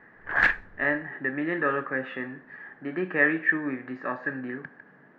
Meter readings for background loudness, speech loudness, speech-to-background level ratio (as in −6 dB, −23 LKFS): −24.5 LKFS, −28.0 LKFS, −3.5 dB